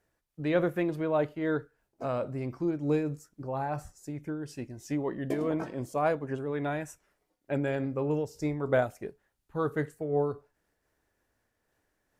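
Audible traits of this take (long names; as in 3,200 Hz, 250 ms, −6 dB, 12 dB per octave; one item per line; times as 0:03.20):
amplitude modulation by smooth noise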